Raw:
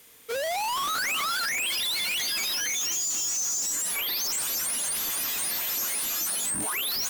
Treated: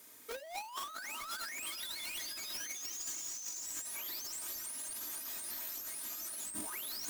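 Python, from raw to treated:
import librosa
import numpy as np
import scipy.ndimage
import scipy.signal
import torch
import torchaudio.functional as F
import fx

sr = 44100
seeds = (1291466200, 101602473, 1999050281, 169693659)

y = scipy.signal.sosfilt(scipy.signal.butter(4, 96.0, 'highpass', fs=sr, output='sos'), x)
y = fx.peak_eq(y, sr, hz=2900.0, db=-7.5, octaves=0.75)
y = fx.comb_fb(y, sr, f0_hz=610.0, decay_s=0.34, harmonics='all', damping=0.0, mix_pct=40)
y = y + 10.0 ** (-13.0 / 20.0) * np.pad(y, (int(465 * sr / 1000.0), 0))[:len(y)]
y = np.clip(y, -10.0 ** (-36.0 / 20.0), 10.0 ** (-36.0 / 20.0))
y = y + 0.53 * np.pad(y, (int(3.2 * sr / 1000.0), 0))[:len(y)]
y = fx.over_compress(y, sr, threshold_db=-39.0, ratio=-0.5)
y = fx.notch(y, sr, hz=550.0, q=18.0)
y = y * 10.0 ** (-2.5 / 20.0)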